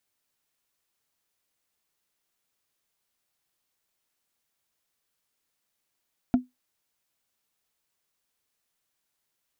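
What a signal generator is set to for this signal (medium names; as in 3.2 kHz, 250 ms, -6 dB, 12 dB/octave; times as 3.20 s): wood hit, lowest mode 251 Hz, decay 0.17 s, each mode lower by 10 dB, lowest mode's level -13 dB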